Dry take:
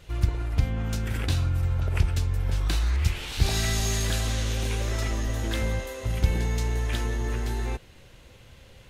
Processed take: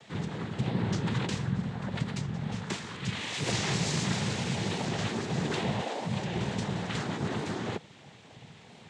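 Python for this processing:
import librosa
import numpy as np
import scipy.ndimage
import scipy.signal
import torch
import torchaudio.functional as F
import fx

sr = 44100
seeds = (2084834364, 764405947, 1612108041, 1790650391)

p1 = fx.over_compress(x, sr, threshold_db=-28.0, ratio=-1.0)
p2 = x + (p1 * 10.0 ** (-3.0 / 20.0))
p3 = fx.noise_vocoder(p2, sr, seeds[0], bands=6)
p4 = fx.air_absorb(p3, sr, metres=52.0)
p5 = fx.record_warp(p4, sr, rpm=45.0, depth_cents=100.0)
y = p5 * 10.0 ** (-3.5 / 20.0)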